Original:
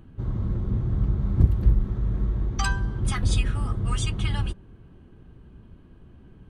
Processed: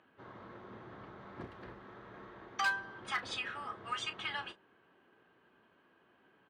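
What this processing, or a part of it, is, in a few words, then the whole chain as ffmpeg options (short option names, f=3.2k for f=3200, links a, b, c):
megaphone: -filter_complex "[0:a]highpass=650,lowpass=3.6k,equalizer=f=1.7k:t=o:w=0.5:g=4,asoftclip=type=hard:threshold=-23.5dB,asplit=2[a][b];[b]adelay=33,volume=-13dB[c];[a][c]amix=inputs=2:normalize=0,volume=-2.5dB"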